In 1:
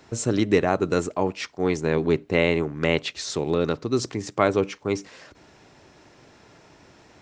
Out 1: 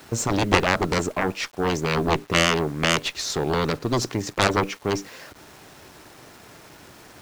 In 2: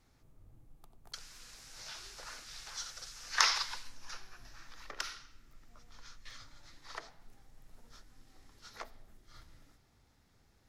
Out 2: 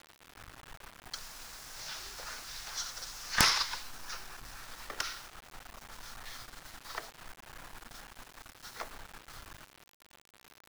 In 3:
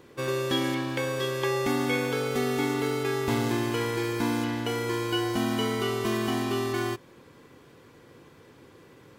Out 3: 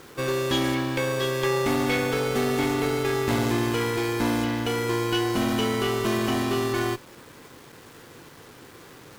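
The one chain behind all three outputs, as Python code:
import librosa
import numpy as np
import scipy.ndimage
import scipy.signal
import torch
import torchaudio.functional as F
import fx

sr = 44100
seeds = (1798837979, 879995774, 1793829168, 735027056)

y = fx.cheby_harmonics(x, sr, harmonics=(3, 5, 7, 8), levels_db=(-24, -34, -9, -18), full_scale_db=-3.5)
y = fx.dmg_noise_band(y, sr, seeds[0], low_hz=670.0, high_hz=1800.0, level_db=-57.0)
y = fx.quant_dither(y, sr, seeds[1], bits=8, dither='none')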